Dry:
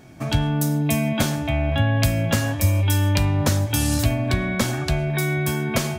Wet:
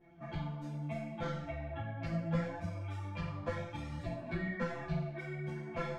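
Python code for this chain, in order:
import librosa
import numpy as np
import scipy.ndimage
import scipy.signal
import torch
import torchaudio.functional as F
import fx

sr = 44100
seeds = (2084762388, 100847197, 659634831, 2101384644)

y = scipy.signal.sosfilt(scipy.signal.butter(2, 1700.0, 'lowpass', fs=sr, output='sos'), x)
y = fx.comb_fb(y, sr, f0_hz=170.0, decay_s=0.72, harmonics='all', damping=0.0, mix_pct=100)
y = fx.chorus_voices(y, sr, voices=6, hz=0.97, base_ms=11, depth_ms=3.0, mix_pct=60)
y = y * librosa.db_to_amplitude(9.0)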